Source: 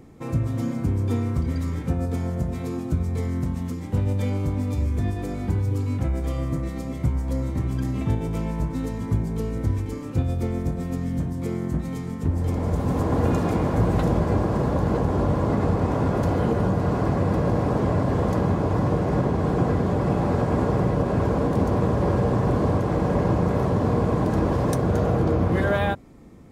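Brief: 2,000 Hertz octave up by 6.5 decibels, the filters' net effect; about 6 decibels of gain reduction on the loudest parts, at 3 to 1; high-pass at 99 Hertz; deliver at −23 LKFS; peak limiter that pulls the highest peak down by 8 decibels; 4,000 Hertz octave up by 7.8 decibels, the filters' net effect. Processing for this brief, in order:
high-pass filter 99 Hz
parametric band 2,000 Hz +7 dB
parametric band 4,000 Hz +7.5 dB
downward compressor 3 to 1, threshold −26 dBFS
level +9 dB
brickwall limiter −14 dBFS

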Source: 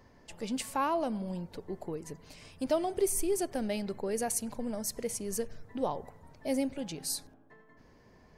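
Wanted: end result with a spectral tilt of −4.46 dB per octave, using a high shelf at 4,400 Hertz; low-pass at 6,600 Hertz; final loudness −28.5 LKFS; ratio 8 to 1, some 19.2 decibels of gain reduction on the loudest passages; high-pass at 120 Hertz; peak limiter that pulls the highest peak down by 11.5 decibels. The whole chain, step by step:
high-pass filter 120 Hz
low-pass filter 6,600 Hz
high-shelf EQ 4,400 Hz −3.5 dB
downward compressor 8 to 1, threshold −44 dBFS
level +24.5 dB
brickwall limiter −19.5 dBFS

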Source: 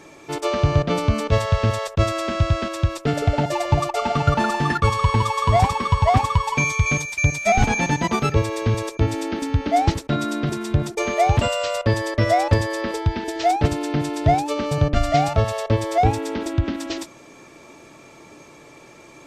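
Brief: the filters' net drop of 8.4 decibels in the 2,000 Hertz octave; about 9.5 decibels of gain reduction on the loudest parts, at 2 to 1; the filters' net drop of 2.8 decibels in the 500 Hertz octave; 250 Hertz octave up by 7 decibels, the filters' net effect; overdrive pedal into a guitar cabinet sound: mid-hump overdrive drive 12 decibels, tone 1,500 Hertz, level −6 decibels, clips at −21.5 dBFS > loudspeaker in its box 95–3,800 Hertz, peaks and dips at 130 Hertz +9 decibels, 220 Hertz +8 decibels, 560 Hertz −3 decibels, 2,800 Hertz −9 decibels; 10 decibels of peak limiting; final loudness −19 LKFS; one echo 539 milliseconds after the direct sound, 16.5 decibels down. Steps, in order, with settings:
parametric band 250 Hz +4.5 dB
parametric band 500 Hz −3 dB
parametric band 2,000 Hz −7.5 dB
downward compressor 2 to 1, threshold −30 dBFS
brickwall limiter −23 dBFS
single-tap delay 539 ms −16.5 dB
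mid-hump overdrive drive 12 dB, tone 1,500 Hz, level −6 dB, clips at −21.5 dBFS
loudspeaker in its box 95–3,800 Hz, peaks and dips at 130 Hz +9 dB, 220 Hz +8 dB, 560 Hz −3 dB, 2,800 Hz −9 dB
level +13 dB

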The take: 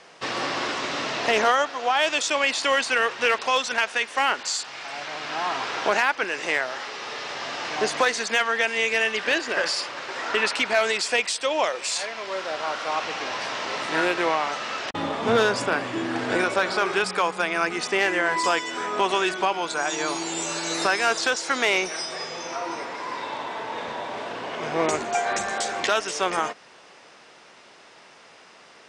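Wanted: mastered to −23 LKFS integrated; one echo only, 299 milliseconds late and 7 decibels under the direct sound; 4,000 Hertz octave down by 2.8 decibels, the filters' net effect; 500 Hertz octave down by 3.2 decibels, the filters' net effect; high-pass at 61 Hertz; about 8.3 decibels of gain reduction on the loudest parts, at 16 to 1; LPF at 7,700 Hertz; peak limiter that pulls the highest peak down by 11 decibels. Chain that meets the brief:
high-pass filter 61 Hz
low-pass filter 7,700 Hz
parametric band 500 Hz −4 dB
parametric band 4,000 Hz −3.5 dB
downward compressor 16 to 1, threshold −25 dBFS
brickwall limiter −25 dBFS
single-tap delay 299 ms −7 dB
level +10 dB

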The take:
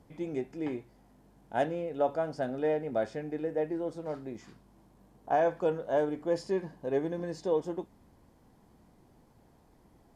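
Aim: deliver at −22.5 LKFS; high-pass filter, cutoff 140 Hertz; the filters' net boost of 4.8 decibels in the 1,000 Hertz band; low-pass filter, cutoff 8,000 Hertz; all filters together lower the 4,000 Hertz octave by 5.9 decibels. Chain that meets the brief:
high-pass filter 140 Hz
low-pass filter 8,000 Hz
parametric band 1,000 Hz +8 dB
parametric band 4,000 Hz −8.5 dB
level +8 dB

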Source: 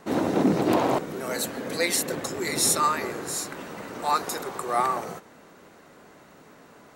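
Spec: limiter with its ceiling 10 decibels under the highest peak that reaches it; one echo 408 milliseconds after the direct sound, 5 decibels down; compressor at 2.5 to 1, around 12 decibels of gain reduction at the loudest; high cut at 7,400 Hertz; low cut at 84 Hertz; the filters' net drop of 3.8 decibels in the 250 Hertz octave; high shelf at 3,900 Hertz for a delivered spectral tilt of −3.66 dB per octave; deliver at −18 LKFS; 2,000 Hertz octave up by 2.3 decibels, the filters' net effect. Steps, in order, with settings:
high-pass filter 84 Hz
low-pass filter 7,400 Hz
parametric band 250 Hz −5 dB
parametric band 2,000 Hz +4.5 dB
high-shelf EQ 3,900 Hz −8 dB
downward compressor 2.5 to 1, threshold −38 dBFS
brickwall limiter −33.5 dBFS
single-tap delay 408 ms −5 dB
level +24 dB

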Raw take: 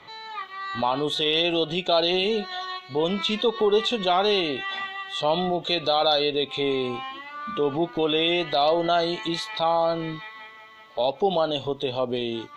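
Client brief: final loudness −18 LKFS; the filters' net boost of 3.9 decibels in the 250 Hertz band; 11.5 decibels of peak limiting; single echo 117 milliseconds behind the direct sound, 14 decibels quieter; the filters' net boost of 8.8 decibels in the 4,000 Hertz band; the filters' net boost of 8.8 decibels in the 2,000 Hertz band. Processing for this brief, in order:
parametric band 250 Hz +5.5 dB
parametric band 2,000 Hz +8.5 dB
parametric band 4,000 Hz +7.5 dB
brickwall limiter −13.5 dBFS
single-tap delay 117 ms −14 dB
level +5 dB

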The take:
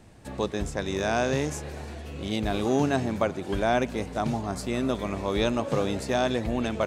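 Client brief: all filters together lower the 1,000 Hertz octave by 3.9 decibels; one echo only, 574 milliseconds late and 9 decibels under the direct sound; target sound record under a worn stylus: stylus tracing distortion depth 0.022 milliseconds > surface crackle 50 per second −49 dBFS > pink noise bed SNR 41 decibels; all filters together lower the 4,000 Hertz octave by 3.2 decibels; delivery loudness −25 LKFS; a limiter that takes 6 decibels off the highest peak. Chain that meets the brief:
parametric band 1,000 Hz −6 dB
parametric band 4,000 Hz −3.5 dB
brickwall limiter −19 dBFS
single-tap delay 574 ms −9 dB
stylus tracing distortion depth 0.022 ms
surface crackle 50 per second −49 dBFS
pink noise bed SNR 41 dB
level +5.5 dB

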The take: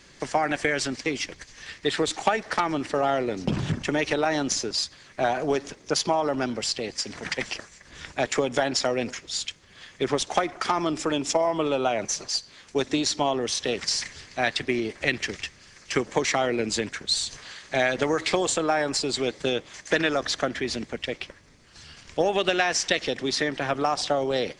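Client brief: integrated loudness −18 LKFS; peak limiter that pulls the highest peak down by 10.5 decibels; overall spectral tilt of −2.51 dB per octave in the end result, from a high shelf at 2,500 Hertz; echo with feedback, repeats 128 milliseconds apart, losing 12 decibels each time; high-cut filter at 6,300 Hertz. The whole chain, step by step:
low-pass filter 6,300 Hz
high-shelf EQ 2,500 Hz +7.5 dB
brickwall limiter −14.5 dBFS
repeating echo 128 ms, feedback 25%, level −12 dB
level +8 dB

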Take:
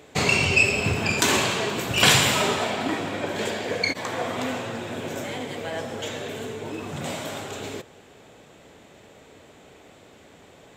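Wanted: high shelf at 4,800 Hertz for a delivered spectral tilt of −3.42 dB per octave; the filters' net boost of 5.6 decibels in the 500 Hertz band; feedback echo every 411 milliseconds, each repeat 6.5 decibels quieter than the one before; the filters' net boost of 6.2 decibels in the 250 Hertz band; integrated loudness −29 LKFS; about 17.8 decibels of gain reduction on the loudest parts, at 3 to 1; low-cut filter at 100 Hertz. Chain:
high-pass filter 100 Hz
parametric band 250 Hz +6.5 dB
parametric band 500 Hz +5 dB
high-shelf EQ 4,800 Hz +6 dB
downward compressor 3 to 1, threshold −36 dBFS
repeating echo 411 ms, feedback 47%, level −6.5 dB
level +5 dB

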